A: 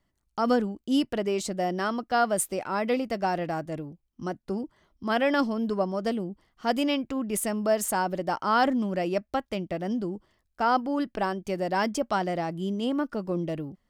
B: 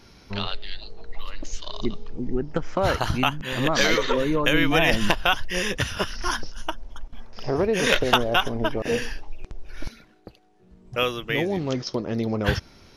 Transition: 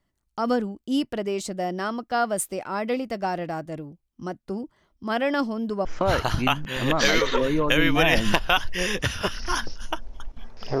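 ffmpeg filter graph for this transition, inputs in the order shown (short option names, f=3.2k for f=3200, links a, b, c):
-filter_complex "[0:a]apad=whole_dur=10.8,atrim=end=10.8,atrim=end=5.852[a];[1:a]atrim=start=2.608:end=7.56[b];[a][b]acrossfade=d=0.004:c1=hsin:c2=hsin"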